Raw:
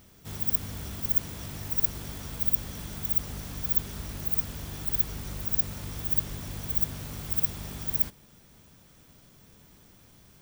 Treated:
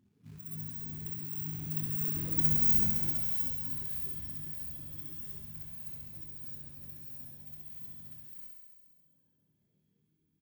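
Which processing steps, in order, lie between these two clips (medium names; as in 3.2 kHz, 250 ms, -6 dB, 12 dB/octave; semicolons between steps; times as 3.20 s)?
Doppler pass-by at 2.51 s, 14 m/s, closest 4.1 m; high-pass 95 Hz 12 dB/octave; reverb removal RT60 1.9 s; hum notches 60/120/180 Hz; in parallel at -2 dB: compression 6:1, threshold -51 dBFS, peak gain reduction 29 dB; on the sum: loudest bins only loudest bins 8; saturation -24.5 dBFS, distortion -15 dB; short-mantissa float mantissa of 2-bit; doubling 26 ms -6.5 dB; thinning echo 67 ms, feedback 77%, high-pass 560 Hz, level -3 dB; gated-style reverb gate 340 ms rising, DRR -4 dB; trim +6 dB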